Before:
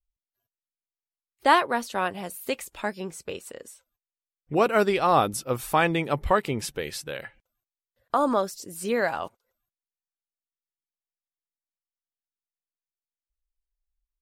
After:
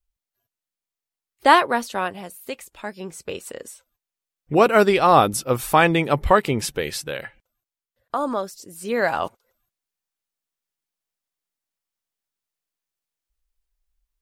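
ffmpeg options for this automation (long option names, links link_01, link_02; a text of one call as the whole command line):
ffmpeg -i in.wav -af "volume=23.5dB,afade=type=out:start_time=1.67:duration=0.68:silence=0.398107,afade=type=in:start_time=2.85:duration=0.71:silence=0.354813,afade=type=out:start_time=6.88:duration=1.28:silence=0.421697,afade=type=in:start_time=8.85:duration=0.4:silence=0.334965" out.wav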